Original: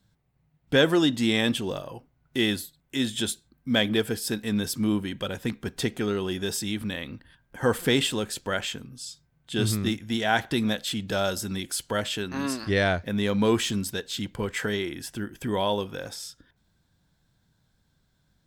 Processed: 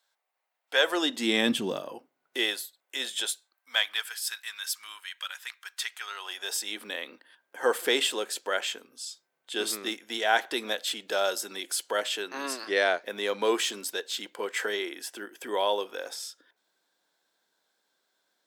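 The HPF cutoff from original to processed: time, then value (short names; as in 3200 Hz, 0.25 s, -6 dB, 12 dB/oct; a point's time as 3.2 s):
HPF 24 dB/oct
0.76 s 620 Hz
1.59 s 160 Hz
2.54 s 490 Hz
3.14 s 490 Hz
4.16 s 1200 Hz
5.92 s 1200 Hz
6.83 s 380 Hz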